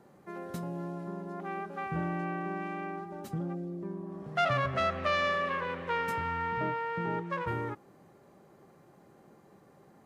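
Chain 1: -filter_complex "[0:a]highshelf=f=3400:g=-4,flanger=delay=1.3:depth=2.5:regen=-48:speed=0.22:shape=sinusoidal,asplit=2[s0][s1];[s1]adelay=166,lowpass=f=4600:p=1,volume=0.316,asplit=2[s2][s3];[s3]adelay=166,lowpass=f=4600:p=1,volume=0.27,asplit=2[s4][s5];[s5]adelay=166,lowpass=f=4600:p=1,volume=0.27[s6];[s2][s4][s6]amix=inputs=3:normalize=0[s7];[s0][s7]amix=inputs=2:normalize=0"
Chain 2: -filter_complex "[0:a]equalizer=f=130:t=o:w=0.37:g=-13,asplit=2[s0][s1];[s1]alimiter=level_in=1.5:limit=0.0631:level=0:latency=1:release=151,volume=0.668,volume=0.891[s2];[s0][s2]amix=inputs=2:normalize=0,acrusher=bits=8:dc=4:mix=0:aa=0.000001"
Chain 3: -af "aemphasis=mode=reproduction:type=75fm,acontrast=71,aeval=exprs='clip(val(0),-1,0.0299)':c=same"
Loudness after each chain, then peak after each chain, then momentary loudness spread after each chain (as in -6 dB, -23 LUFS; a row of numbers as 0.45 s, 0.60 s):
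-37.5 LUFS, -30.0 LUFS, -29.0 LUFS; -21.5 dBFS, -16.0 dBFS, -12.0 dBFS; 13 LU, 9 LU, 9 LU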